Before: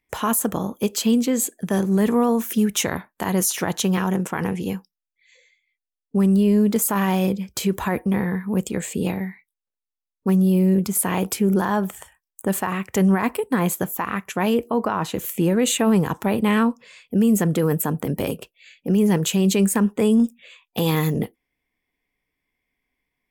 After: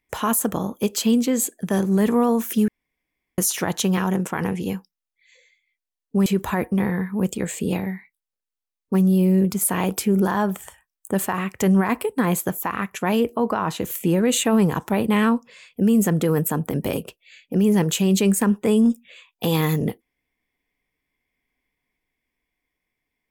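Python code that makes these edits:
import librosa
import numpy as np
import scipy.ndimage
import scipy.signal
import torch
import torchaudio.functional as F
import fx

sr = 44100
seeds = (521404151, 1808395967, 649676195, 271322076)

y = fx.edit(x, sr, fx.room_tone_fill(start_s=2.68, length_s=0.7),
    fx.cut(start_s=6.26, length_s=1.34), tone=tone)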